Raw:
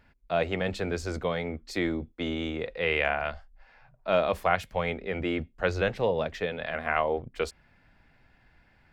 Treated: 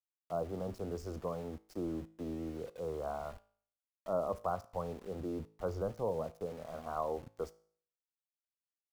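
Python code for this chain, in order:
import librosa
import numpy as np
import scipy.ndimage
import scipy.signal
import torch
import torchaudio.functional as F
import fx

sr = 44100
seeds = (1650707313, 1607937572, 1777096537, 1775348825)

y = scipy.signal.sosfilt(scipy.signal.ellip(3, 1.0, 40, [1200.0, 5100.0], 'bandstop', fs=sr, output='sos'), x)
y = fx.high_shelf(y, sr, hz=7100.0, db=-11.5)
y = np.where(np.abs(y) >= 10.0 ** (-43.0 / 20.0), y, 0.0)
y = fx.comb_fb(y, sr, f0_hz=54.0, decay_s=0.52, harmonics='all', damping=0.0, mix_pct=40)
y = y * 10.0 ** (-5.0 / 20.0)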